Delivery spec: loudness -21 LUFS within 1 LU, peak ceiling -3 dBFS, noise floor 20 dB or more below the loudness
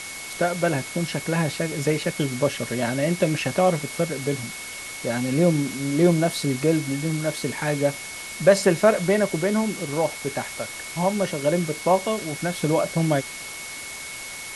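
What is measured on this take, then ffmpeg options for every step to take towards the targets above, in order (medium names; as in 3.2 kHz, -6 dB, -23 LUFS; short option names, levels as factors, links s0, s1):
steady tone 2.2 kHz; tone level -37 dBFS; noise floor -36 dBFS; noise floor target -44 dBFS; loudness -24.0 LUFS; peak level -4.0 dBFS; loudness target -21.0 LUFS
-> -af "bandreject=f=2200:w=30"
-af "afftdn=nr=8:nf=-36"
-af "volume=1.41,alimiter=limit=0.708:level=0:latency=1"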